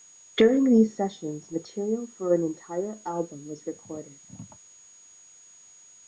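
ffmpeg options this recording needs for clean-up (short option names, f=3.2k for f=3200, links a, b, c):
-af "bandreject=f=6.7k:w=30,agate=range=-21dB:threshold=-45dB"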